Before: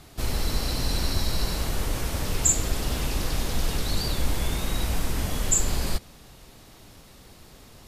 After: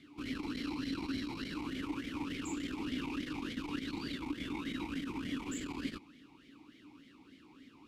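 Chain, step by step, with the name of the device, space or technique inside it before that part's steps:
talk box (tube saturation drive 19 dB, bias 0.45; formant filter swept between two vowels i-u 3.4 Hz)
level +7.5 dB

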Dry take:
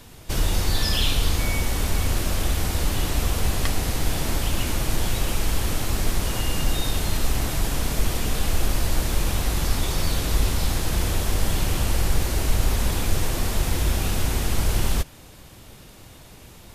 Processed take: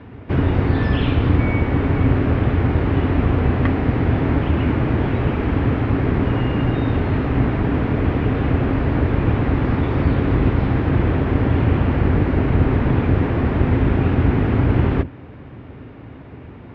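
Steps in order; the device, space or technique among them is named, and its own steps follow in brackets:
sub-octave bass pedal (sub-octave generator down 1 octave, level −1 dB; loudspeaker in its box 72–2,200 Hz, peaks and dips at 80 Hz +5 dB, 120 Hz +7 dB, 270 Hz +10 dB, 410 Hz +5 dB)
level +5.5 dB

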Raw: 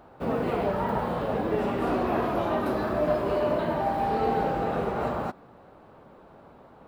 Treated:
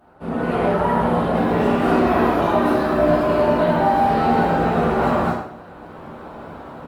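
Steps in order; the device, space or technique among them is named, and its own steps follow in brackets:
0:02.34–0:02.93: low-shelf EQ 120 Hz −2.5 dB
repeating echo 63 ms, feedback 52%, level −23.5 dB
speakerphone in a meeting room (convolution reverb RT60 0.55 s, pre-delay 9 ms, DRR −6 dB; far-end echo of a speakerphone 90 ms, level −13 dB; automatic gain control gain up to 14 dB; level −5 dB; Opus 32 kbit/s 48,000 Hz)

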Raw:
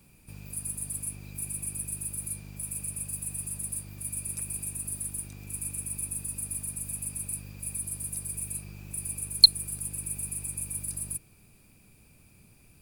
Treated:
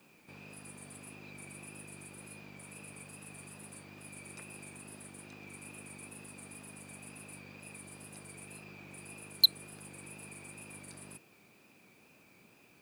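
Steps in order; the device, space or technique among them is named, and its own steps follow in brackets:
tape answering machine (band-pass filter 310–3,100 Hz; soft clipping −18 dBFS, distortion −10 dB; tape wow and flutter; white noise bed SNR 28 dB)
level +4 dB

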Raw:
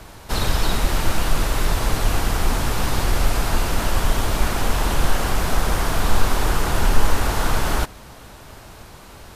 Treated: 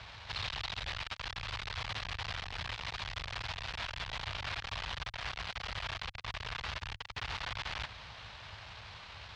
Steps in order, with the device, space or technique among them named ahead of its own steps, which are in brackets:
scooped metal amplifier (tube saturation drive 31 dB, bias 0.45; loudspeaker in its box 80–4,100 Hz, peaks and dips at 100 Hz +5 dB, 290 Hz +6 dB, 1,400 Hz −3 dB; guitar amp tone stack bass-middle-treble 10-0-10)
level +5.5 dB

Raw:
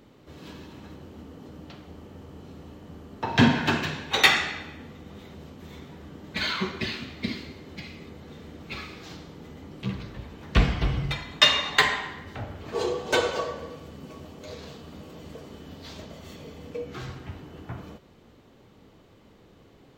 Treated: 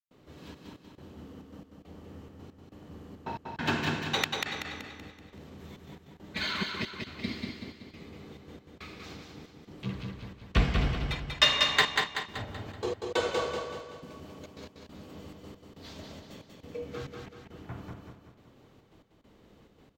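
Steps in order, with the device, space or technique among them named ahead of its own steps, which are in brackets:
trance gate with a delay (gate pattern ".xxxx.x." 138 BPM −60 dB; repeating echo 190 ms, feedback 46%, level −4 dB)
level −4.5 dB

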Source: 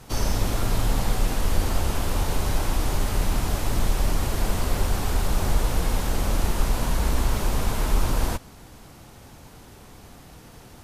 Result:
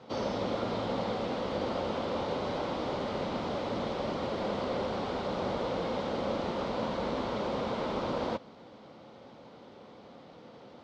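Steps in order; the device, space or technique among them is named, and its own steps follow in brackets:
kitchen radio (loudspeaker in its box 210–4,000 Hz, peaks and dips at 220 Hz +4 dB, 530 Hz +9 dB, 1,700 Hz −7 dB, 2,600 Hz −6 dB)
level −3 dB

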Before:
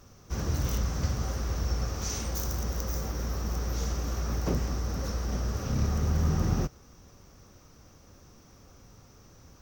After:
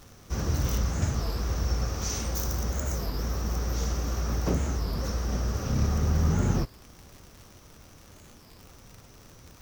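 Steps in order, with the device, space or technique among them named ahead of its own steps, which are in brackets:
warped LP (wow of a warped record 33 1/3 rpm, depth 250 cents; surface crackle 130 per second −41 dBFS; pink noise bed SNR 31 dB)
level +2 dB

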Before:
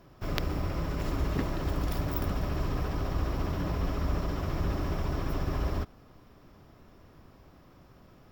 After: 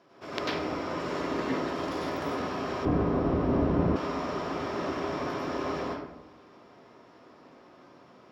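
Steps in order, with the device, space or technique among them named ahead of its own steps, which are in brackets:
supermarket ceiling speaker (band-pass filter 310–6,700 Hz; convolution reverb RT60 0.90 s, pre-delay 90 ms, DRR −6 dB)
0:02.85–0:03.96: spectral tilt −4.5 dB per octave
level −1.5 dB

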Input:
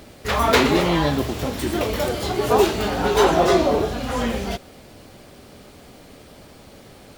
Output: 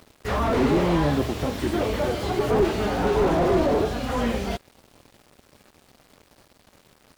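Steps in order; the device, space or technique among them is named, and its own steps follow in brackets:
early transistor amplifier (dead-zone distortion −42.5 dBFS; slew-rate limiting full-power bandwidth 66 Hz)

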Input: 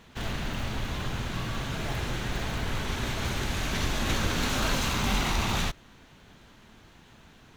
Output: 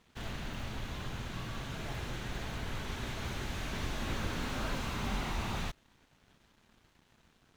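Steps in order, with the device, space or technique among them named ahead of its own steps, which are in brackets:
early transistor amplifier (dead-zone distortion −57 dBFS; slew-rate limiting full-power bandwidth 65 Hz)
level −7.5 dB

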